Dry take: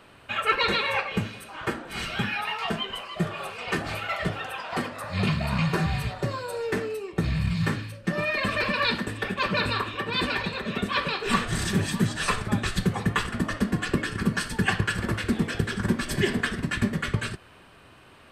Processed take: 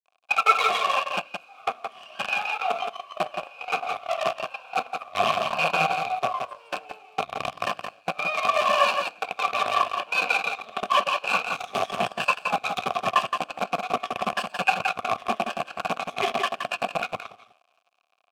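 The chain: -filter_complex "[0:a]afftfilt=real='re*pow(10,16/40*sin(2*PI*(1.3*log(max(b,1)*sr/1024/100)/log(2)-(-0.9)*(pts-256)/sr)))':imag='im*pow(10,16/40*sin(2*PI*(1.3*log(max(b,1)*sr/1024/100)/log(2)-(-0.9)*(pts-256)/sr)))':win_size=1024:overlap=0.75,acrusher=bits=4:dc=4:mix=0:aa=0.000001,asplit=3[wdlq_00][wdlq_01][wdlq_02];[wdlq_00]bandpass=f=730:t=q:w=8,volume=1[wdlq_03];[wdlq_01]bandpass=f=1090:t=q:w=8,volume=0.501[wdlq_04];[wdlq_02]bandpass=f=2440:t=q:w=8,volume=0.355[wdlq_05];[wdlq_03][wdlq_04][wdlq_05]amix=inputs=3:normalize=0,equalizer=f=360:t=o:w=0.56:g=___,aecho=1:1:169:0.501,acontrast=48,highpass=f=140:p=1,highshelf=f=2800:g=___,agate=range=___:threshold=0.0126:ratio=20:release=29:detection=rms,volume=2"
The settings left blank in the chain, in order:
-5.5, 4.5, 0.282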